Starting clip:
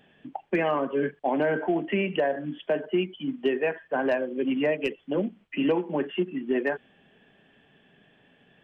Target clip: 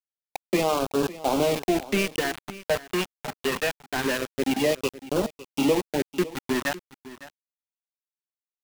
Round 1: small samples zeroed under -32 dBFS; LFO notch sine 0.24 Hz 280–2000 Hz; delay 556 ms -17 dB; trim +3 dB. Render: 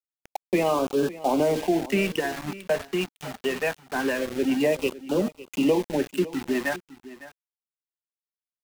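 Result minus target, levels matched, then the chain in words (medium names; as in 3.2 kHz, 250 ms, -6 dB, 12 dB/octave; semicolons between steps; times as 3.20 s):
small samples zeroed: distortion -8 dB
small samples zeroed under -25 dBFS; LFO notch sine 0.24 Hz 280–2000 Hz; delay 556 ms -17 dB; trim +3 dB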